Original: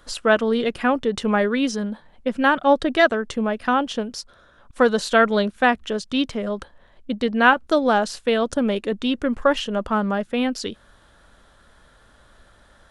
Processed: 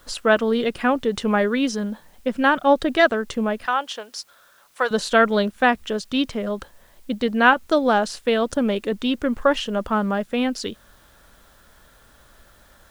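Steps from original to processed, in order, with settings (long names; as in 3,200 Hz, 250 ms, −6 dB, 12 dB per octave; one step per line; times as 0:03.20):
0:03.66–0:04.91: high-pass filter 730 Hz 12 dB per octave
bit-depth reduction 10 bits, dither triangular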